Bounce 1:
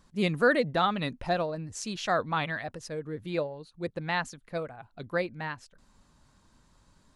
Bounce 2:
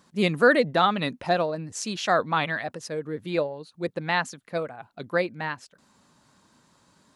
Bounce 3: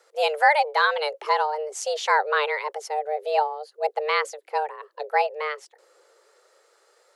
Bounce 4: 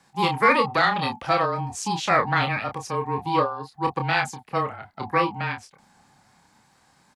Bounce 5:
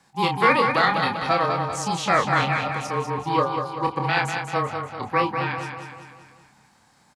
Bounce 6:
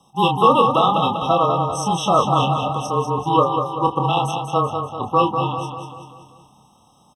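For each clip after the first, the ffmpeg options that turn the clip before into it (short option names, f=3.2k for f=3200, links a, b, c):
-af "highpass=160,volume=5dB"
-filter_complex "[0:a]afreqshift=300,acrossover=split=590|960[a][b][c];[a]dynaudnorm=f=220:g=13:m=9dB[d];[d][b][c]amix=inputs=3:normalize=0"
-filter_complex "[0:a]aeval=exprs='val(0)*sin(2*PI*320*n/s)':c=same,asplit=2[a][b];[b]asoftclip=type=tanh:threshold=-16dB,volume=-8dB[c];[a][c]amix=inputs=2:normalize=0,asplit=2[d][e];[e]adelay=29,volume=-6dB[f];[d][f]amix=inputs=2:normalize=0"
-af "aecho=1:1:194|388|582|776|970|1164:0.473|0.241|0.123|0.0628|0.032|0.0163"
-af "afftfilt=real='re*eq(mod(floor(b*sr/1024/1300),2),0)':imag='im*eq(mod(floor(b*sr/1024/1300),2),0)':win_size=1024:overlap=0.75,volume=5.5dB"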